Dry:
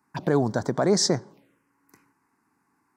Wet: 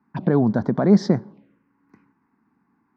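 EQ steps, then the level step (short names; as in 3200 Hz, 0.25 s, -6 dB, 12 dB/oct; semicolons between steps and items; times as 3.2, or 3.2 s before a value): air absorption 300 m; low shelf 88 Hz +5 dB; bell 210 Hz +10.5 dB 0.66 oct; +1.0 dB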